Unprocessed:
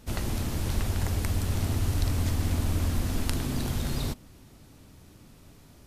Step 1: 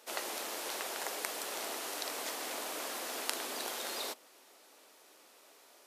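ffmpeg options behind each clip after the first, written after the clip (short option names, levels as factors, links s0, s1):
-af "highpass=f=450:w=0.5412,highpass=f=450:w=1.3066"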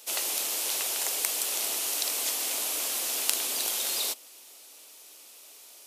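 -af "aexciter=amount=2.2:drive=7.8:freq=2400"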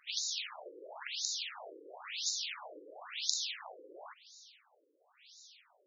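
-af "bandreject=f=57.5:t=h:w=4,bandreject=f=115:t=h:w=4,bandreject=f=172.5:t=h:w=4,bandreject=f=230:t=h:w=4,bandreject=f=287.5:t=h:w=4,bandreject=f=345:t=h:w=4,bandreject=f=402.5:t=h:w=4,bandreject=f=460:t=h:w=4,bandreject=f=517.5:t=h:w=4,bandreject=f=575:t=h:w=4,bandreject=f=632.5:t=h:w=4,bandreject=f=690:t=h:w=4,bandreject=f=747.5:t=h:w=4,bandreject=f=805:t=h:w=4,bandreject=f=862.5:t=h:w=4,bandreject=f=920:t=h:w=4,bandreject=f=977.5:t=h:w=4,asubboost=boost=9.5:cutoff=130,afftfilt=real='re*between(b*sr/1024,370*pow(5200/370,0.5+0.5*sin(2*PI*0.97*pts/sr))/1.41,370*pow(5200/370,0.5+0.5*sin(2*PI*0.97*pts/sr))*1.41)':imag='im*between(b*sr/1024,370*pow(5200/370,0.5+0.5*sin(2*PI*0.97*pts/sr))/1.41,370*pow(5200/370,0.5+0.5*sin(2*PI*0.97*pts/sr))*1.41)':win_size=1024:overlap=0.75"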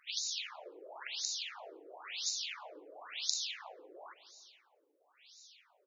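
-filter_complex "[0:a]asplit=2[s0][s1];[s1]adelay=172,lowpass=f=1000:p=1,volume=0.158,asplit=2[s2][s3];[s3]adelay=172,lowpass=f=1000:p=1,volume=0.51,asplit=2[s4][s5];[s5]adelay=172,lowpass=f=1000:p=1,volume=0.51,asplit=2[s6][s7];[s7]adelay=172,lowpass=f=1000:p=1,volume=0.51,asplit=2[s8][s9];[s9]adelay=172,lowpass=f=1000:p=1,volume=0.51[s10];[s0][s2][s4][s6][s8][s10]amix=inputs=6:normalize=0,volume=0.891"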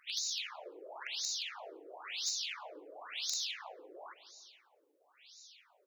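-af "asoftclip=type=tanh:threshold=0.0447,volume=1.19"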